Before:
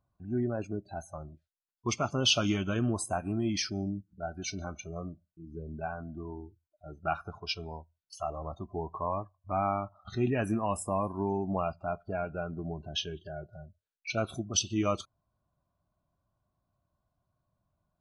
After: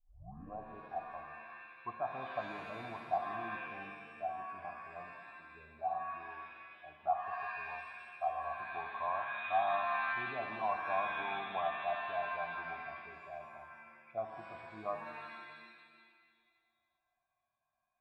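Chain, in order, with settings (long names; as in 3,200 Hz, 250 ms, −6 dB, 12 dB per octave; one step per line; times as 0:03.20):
turntable start at the beginning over 0.58 s
formant resonators in series a
reverb with rising layers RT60 1.7 s, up +7 semitones, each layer −2 dB, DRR 5.5 dB
level +4 dB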